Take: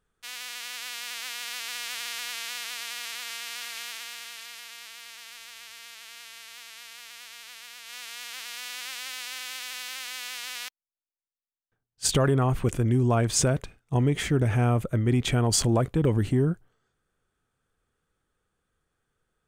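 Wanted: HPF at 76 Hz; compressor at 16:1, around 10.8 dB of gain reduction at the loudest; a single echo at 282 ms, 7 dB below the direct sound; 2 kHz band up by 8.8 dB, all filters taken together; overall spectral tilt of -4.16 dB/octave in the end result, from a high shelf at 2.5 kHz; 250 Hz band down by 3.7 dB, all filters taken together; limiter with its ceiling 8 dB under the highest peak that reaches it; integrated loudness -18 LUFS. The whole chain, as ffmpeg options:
-af "highpass=76,equalizer=f=250:t=o:g=-5,equalizer=f=2000:t=o:g=8,highshelf=f=2500:g=6,acompressor=threshold=0.0562:ratio=16,alimiter=limit=0.0841:level=0:latency=1,aecho=1:1:282:0.447,volume=5.62"

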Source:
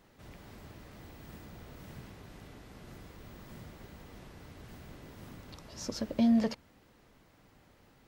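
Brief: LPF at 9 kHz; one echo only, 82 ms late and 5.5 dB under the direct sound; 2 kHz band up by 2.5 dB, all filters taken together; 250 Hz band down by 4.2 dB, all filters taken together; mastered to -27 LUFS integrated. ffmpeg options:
-af "lowpass=9000,equalizer=f=250:t=o:g=-4.5,equalizer=f=2000:t=o:g=3,aecho=1:1:82:0.531,volume=2.99"

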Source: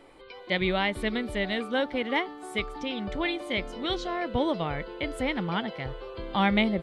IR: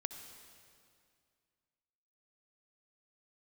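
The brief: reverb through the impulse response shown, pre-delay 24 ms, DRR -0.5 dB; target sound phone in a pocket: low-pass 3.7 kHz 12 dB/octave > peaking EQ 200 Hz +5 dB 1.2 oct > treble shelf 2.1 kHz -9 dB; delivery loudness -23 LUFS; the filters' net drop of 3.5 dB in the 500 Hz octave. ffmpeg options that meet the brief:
-filter_complex "[0:a]equalizer=f=500:t=o:g=-5,asplit=2[s0][s1];[1:a]atrim=start_sample=2205,adelay=24[s2];[s1][s2]afir=irnorm=-1:irlink=0,volume=1.19[s3];[s0][s3]amix=inputs=2:normalize=0,lowpass=3700,equalizer=f=200:t=o:w=1.2:g=5,highshelf=f=2100:g=-9,volume=1.5"

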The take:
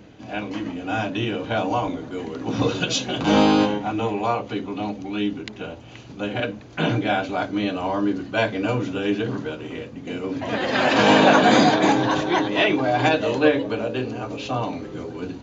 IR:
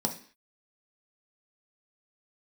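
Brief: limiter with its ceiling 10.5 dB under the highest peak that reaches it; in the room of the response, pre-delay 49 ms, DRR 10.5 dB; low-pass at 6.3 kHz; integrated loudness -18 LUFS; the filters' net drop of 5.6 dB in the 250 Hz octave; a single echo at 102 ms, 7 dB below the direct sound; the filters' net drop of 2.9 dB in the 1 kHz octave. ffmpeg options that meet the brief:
-filter_complex "[0:a]lowpass=6300,equalizer=f=250:t=o:g=-7,equalizer=f=1000:t=o:g=-3.5,alimiter=limit=0.168:level=0:latency=1,aecho=1:1:102:0.447,asplit=2[s0][s1];[1:a]atrim=start_sample=2205,adelay=49[s2];[s1][s2]afir=irnorm=-1:irlink=0,volume=0.15[s3];[s0][s3]amix=inputs=2:normalize=0,volume=2.51"

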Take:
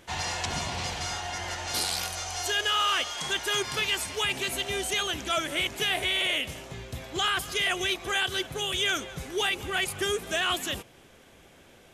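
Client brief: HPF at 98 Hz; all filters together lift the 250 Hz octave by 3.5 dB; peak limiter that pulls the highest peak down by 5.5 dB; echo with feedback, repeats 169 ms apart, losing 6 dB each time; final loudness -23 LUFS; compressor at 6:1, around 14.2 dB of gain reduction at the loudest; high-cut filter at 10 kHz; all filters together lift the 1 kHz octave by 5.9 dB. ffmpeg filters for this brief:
-af "highpass=98,lowpass=10000,equalizer=f=250:t=o:g=5,equalizer=f=1000:t=o:g=8,acompressor=threshold=0.0178:ratio=6,alimiter=level_in=1.88:limit=0.0631:level=0:latency=1,volume=0.531,aecho=1:1:169|338|507|676|845|1014:0.501|0.251|0.125|0.0626|0.0313|0.0157,volume=5.01"

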